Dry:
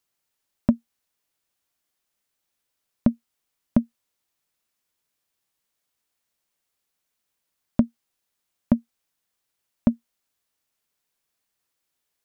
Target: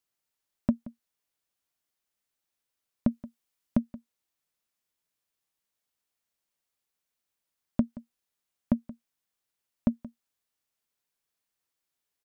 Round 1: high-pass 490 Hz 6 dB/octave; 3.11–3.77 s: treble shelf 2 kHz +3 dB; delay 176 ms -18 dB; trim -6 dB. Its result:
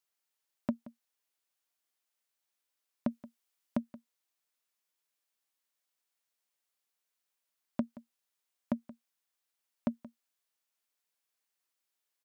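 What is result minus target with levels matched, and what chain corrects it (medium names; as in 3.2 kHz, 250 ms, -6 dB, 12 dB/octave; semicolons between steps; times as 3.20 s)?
500 Hz band +4.5 dB
3.11–3.77 s: treble shelf 2 kHz +3 dB; delay 176 ms -18 dB; trim -6 dB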